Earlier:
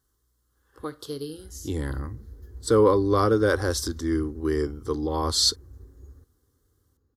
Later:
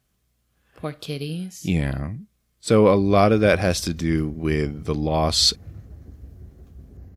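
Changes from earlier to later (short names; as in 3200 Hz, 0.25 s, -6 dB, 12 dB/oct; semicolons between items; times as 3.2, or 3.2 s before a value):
background: entry +1.55 s; master: remove fixed phaser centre 660 Hz, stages 6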